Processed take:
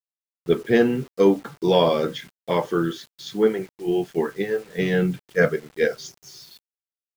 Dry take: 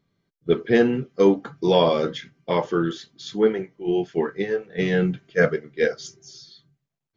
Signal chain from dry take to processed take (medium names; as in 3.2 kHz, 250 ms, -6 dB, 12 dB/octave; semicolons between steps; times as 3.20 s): bit crusher 8-bit